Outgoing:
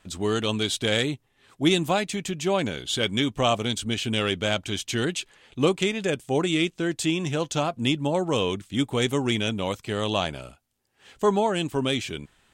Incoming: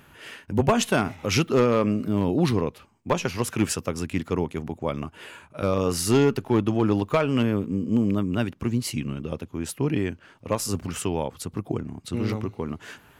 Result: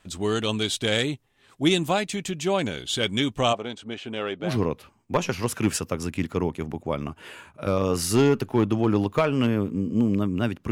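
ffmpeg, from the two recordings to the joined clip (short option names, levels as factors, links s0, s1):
-filter_complex "[0:a]asplit=3[s0][s1][s2];[s0]afade=t=out:st=3.52:d=0.02[s3];[s1]bandpass=f=730:t=q:w=0.7:csg=0,afade=t=in:st=3.52:d=0.02,afade=t=out:st=4.59:d=0.02[s4];[s2]afade=t=in:st=4.59:d=0.02[s5];[s3][s4][s5]amix=inputs=3:normalize=0,apad=whole_dur=10.71,atrim=end=10.71,atrim=end=4.59,asetpts=PTS-STARTPTS[s6];[1:a]atrim=start=2.35:end=8.67,asetpts=PTS-STARTPTS[s7];[s6][s7]acrossfade=d=0.2:c1=tri:c2=tri"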